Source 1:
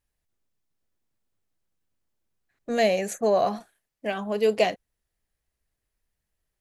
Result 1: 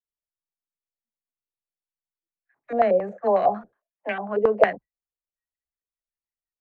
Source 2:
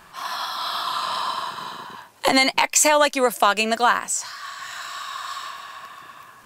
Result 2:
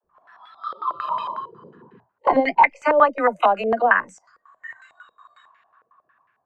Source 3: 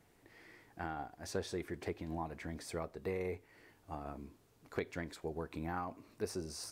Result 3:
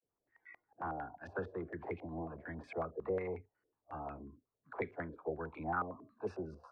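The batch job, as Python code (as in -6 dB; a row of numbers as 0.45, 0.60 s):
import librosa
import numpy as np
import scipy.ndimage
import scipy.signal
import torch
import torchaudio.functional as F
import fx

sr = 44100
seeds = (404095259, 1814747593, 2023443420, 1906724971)

y = fx.dispersion(x, sr, late='lows', ms=46.0, hz=360.0)
y = fx.noise_reduce_blind(y, sr, reduce_db=23)
y = fx.filter_held_lowpass(y, sr, hz=11.0, low_hz=490.0, high_hz=2100.0)
y = y * 10.0 ** (-2.5 / 20.0)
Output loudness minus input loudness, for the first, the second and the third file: +2.5, +1.5, +0.5 LU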